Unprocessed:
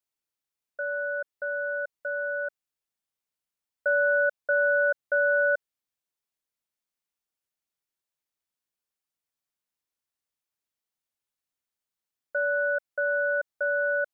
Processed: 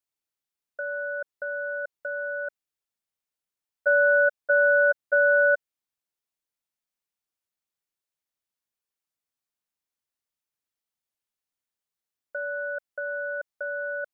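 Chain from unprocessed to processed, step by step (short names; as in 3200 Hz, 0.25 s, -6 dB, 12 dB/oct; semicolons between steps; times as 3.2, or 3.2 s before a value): level quantiser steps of 12 dB; gain +5 dB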